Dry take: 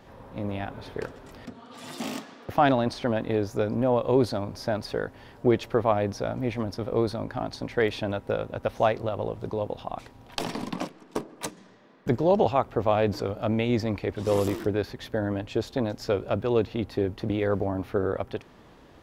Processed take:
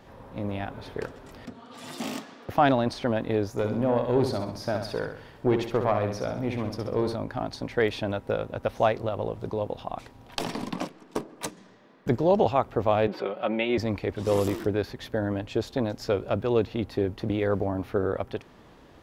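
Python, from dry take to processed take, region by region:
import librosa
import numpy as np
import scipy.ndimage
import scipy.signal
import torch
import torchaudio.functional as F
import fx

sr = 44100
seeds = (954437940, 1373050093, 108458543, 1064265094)

y = fx.chain(x, sr, fx.tube_stage(drive_db=12.0, bias=0.4),
    fx.room_flutter(wall_m=11.3, rt60_s=0.58), at=(3.51, 7.15))
y = fx.chain(y, sr, fx.highpass(hz=300.0, slope=12),
    fx.high_shelf_res(hz=4500.0, db=-14.0, q=1.5),
    fx.comb(ms=5.4, depth=0.66), at=(13.07, 13.78))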